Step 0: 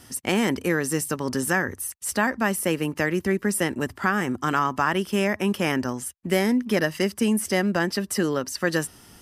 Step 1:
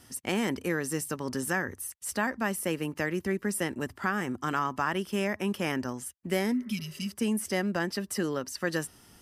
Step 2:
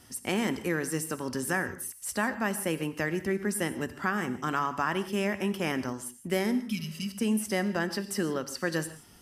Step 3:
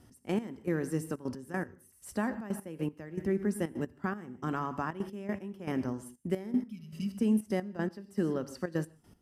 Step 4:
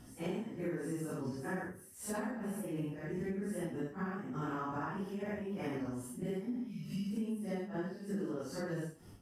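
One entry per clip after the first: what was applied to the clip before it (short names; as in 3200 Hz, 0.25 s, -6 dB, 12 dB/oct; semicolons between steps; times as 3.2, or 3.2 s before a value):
spectral repair 6.55–7.07, 260–2200 Hz after; gain -6.5 dB
non-linear reverb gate 0.19 s flat, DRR 11.5 dB
tilt shelf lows +7 dB, about 910 Hz; step gate "x..x...xxxxx." 156 bpm -12 dB; gain -5.5 dB
phase scrambler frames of 0.2 s; compressor 6:1, threshold -41 dBFS, peak gain reduction 16.5 dB; gain +5 dB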